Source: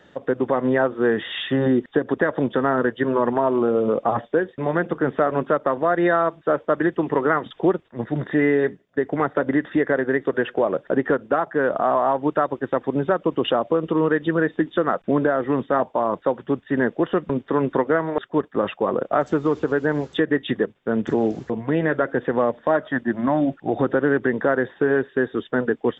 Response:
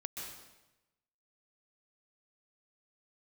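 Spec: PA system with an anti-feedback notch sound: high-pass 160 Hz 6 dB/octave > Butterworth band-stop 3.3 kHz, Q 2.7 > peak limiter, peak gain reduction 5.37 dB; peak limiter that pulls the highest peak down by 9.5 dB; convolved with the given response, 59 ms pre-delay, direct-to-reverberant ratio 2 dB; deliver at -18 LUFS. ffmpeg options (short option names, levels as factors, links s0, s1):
-filter_complex "[0:a]alimiter=limit=0.158:level=0:latency=1,asplit=2[s0][s1];[1:a]atrim=start_sample=2205,adelay=59[s2];[s1][s2]afir=irnorm=-1:irlink=0,volume=0.841[s3];[s0][s3]amix=inputs=2:normalize=0,highpass=f=160:p=1,asuperstop=centerf=3300:order=8:qfactor=2.7,volume=2.82,alimiter=limit=0.422:level=0:latency=1"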